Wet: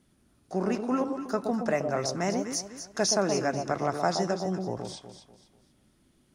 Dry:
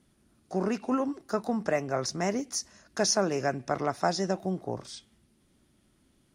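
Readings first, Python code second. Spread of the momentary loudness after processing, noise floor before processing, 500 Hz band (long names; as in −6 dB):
10 LU, −68 dBFS, +1.5 dB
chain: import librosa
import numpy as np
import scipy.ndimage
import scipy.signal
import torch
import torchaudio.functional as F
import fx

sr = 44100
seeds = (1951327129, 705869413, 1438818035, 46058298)

y = fx.echo_alternate(x, sr, ms=122, hz=990.0, feedback_pct=57, wet_db=-5.0)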